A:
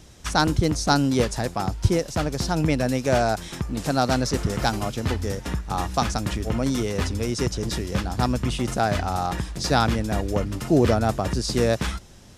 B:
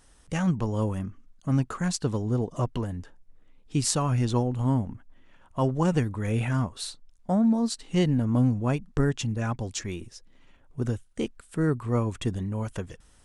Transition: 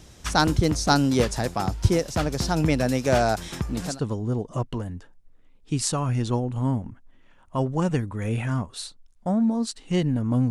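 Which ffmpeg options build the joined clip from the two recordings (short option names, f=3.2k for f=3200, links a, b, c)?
-filter_complex "[0:a]apad=whole_dur=10.5,atrim=end=10.5,atrim=end=4,asetpts=PTS-STARTPTS[a];[1:a]atrim=start=1.79:end=8.53,asetpts=PTS-STARTPTS[b];[a][b]acrossfade=d=0.24:c1=tri:c2=tri"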